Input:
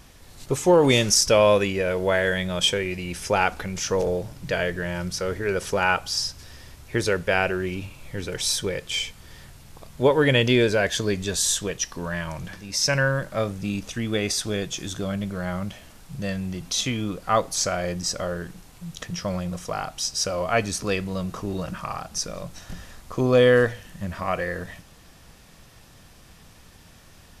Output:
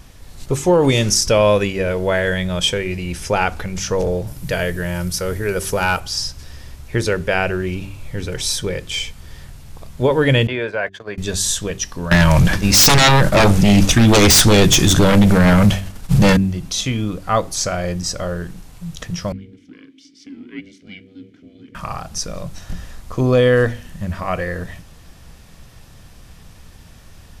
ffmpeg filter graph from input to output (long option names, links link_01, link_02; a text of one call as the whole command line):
ffmpeg -i in.wav -filter_complex "[0:a]asettb=1/sr,asplit=3[link_01][link_02][link_03];[link_01]atrim=end=4.274[link_04];[link_02]atrim=start=4.27:end=6,asetpts=PTS-STARTPTS,afade=type=in:duration=0.004:curve=qsin,afade=type=out:start_time=1.726:duration=0.004:curve=qsin,equalizer=frequency=12000:width_type=o:width=0.96:gain=12.5,volume=13.5dB,asoftclip=hard,volume=-13.5dB[link_05];[link_03]atrim=start=5.996[link_06];[link_04][link_05]acrossfade=duration=0.004:curve1=hsin:curve2=qsin[link_07];[link_07][link_06]acrossfade=duration=0.004:curve1=qsin:curve2=hsin,asettb=1/sr,asplit=3[link_08][link_09][link_10];[link_08]atrim=end=10.474[link_11];[link_09]atrim=start=10.47:end=11.18,asetpts=PTS-STARTPTS,afade=type=in:duration=0.004:curve=qsin,afade=type=out:start_time=0.706:duration=0.004:curve=qsin,agate=range=-40dB:threshold=-26dB:ratio=16:release=100:detection=peak,highpass=96,acrossover=split=570 2600:gain=0.2 1 0.0891[link_12][link_13][link_14];[link_12][link_13][link_14]amix=inputs=3:normalize=0[link_15];[link_10]atrim=start=11.176[link_16];[link_11][link_15]acrossfade=duration=0.004:curve1=hsin:curve2=qsin[link_17];[link_17][link_16]acrossfade=duration=0.004:curve1=qsin:curve2=hsin,asettb=1/sr,asplit=3[link_18][link_19][link_20];[link_18]atrim=end=12.114[link_21];[link_19]atrim=start=12.11:end=16.37,asetpts=PTS-STARTPTS,afade=type=in:duration=0.004:curve=qsin,afade=type=out:start_time=4.256:duration=0.004:curve=qsin,aeval=exprs='0.335*sin(PI/2*5.62*val(0)/0.335)':channel_layout=same,agate=range=-33dB:threshold=-19dB:ratio=3:release=100:detection=peak[link_22];[link_20]atrim=start=16.366[link_23];[link_21][link_22]acrossfade=duration=0.004:curve1=hsin:curve2=qsin[link_24];[link_24][link_23]acrossfade=duration=0.004:curve1=qsin:curve2=hsin,asettb=1/sr,asplit=3[link_25][link_26][link_27];[link_25]atrim=end=19.324[link_28];[link_26]atrim=start=19.32:end=21.75,asetpts=PTS-STARTPTS,afade=type=in:duration=0.004:curve=qsin,afade=type=out:start_time=2.426:duration=0.004:curve=qsin,aeval=exprs='val(0)*sin(2*PI*290*n/s)':channel_layout=same,asplit=3[link_29][link_30][link_31];[link_29]bandpass=frequency=270:width_type=q:width=8,volume=0dB[link_32];[link_30]bandpass=frequency=2290:width_type=q:width=8,volume=-6dB[link_33];[link_31]bandpass=frequency=3010:width_type=q:width=8,volume=-9dB[link_34];[link_32][link_33][link_34]amix=inputs=3:normalize=0[link_35];[link_27]atrim=start=21.746[link_36];[link_28][link_35]acrossfade=duration=0.004:curve1=hsin:curve2=qsin[link_37];[link_37][link_36]acrossfade=duration=0.004:curve1=qsin:curve2=hsin,lowshelf=frequency=150:gain=9,bandreject=frequency=48.45:width_type=h:width=4,bandreject=frequency=96.9:width_type=h:width=4,bandreject=frequency=145.35:width_type=h:width=4,bandreject=frequency=193.8:width_type=h:width=4,bandreject=frequency=242.25:width_type=h:width=4,bandreject=frequency=290.7:width_type=h:width=4,bandreject=frequency=339.15:width_type=h:width=4,bandreject=frequency=387.6:width_type=h:width=4,alimiter=level_in=6.5dB:limit=-1dB:release=50:level=0:latency=1,volume=-3.5dB" out.wav